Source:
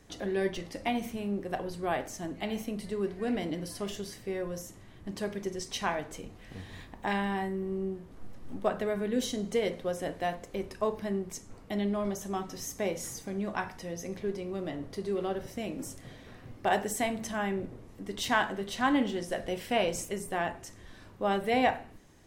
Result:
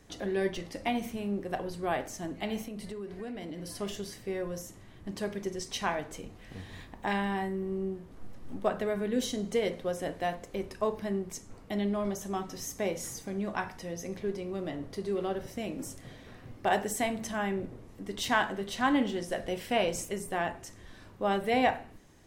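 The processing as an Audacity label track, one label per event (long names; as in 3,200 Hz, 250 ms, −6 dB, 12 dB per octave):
2.630000	3.700000	downward compressor, threshold −36 dBFS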